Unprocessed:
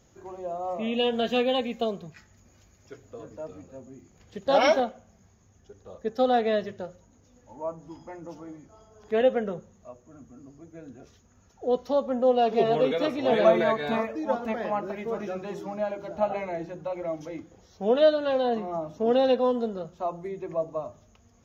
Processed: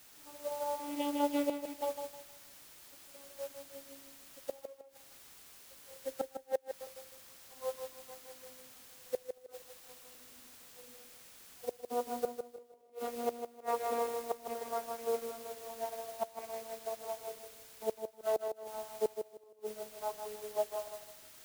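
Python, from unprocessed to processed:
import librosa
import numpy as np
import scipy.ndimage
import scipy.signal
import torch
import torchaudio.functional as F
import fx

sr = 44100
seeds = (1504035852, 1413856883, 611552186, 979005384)

p1 = fx.vocoder_glide(x, sr, note=62, semitones=-6)
p2 = scipy.signal.sosfilt(scipy.signal.butter(4, 390.0, 'highpass', fs=sr, output='sos'), p1)
p3 = fx.high_shelf(p2, sr, hz=3500.0, db=-10.0)
p4 = fx.notch(p3, sr, hz=1700.0, q=8.9)
p5 = fx.quant_dither(p4, sr, seeds[0], bits=6, dither='triangular')
p6 = p4 + (p5 * librosa.db_to_amplitude(-8.0))
p7 = fx.gate_flip(p6, sr, shuts_db=-17.0, range_db=-27)
p8 = p7 + fx.echo_feedback(p7, sr, ms=156, feedback_pct=40, wet_db=-5.0, dry=0)
p9 = fx.upward_expand(p8, sr, threshold_db=-46.0, expansion=1.5)
y = p9 * librosa.db_to_amplitude(-3.5)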